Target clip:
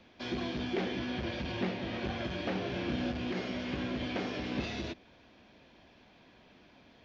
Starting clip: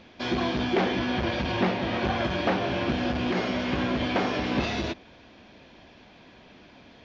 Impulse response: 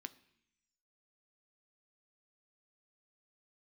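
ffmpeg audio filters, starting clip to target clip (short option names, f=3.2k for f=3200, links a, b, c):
-filter_complex "[0:a]acrossover=split=290|670|1400[a][b][c][d];[c]acompressor=threshold=-47dB:ratio=6[e];[a][b][e][d]amix=inputs=4:normalize=0,asettb=1/sr,asplit=3[f][g][h];[f]atrim=end=2.524[i];[g]atrim=start=2.52:end=3.11,asetpts=PTS-STARTPTS,afade=t=in:d=0.004:c=qsin,afade=t=out:st=0.586:d=0.004:c=qsin,asplit=2[j][k];[k]adelay=32,volume=-5dB[l];[j][l]amix=inputs=2:normalize=0,atrim=end_sample=26019[m];[h]atrim=start=3.106[n];[i][m]acrossfade=d=0.004:c1=hsin:c2=qsin[o];[o][n]acrossfade=d=0.004:c1=qsin:c2=hsin,volume=-8dB"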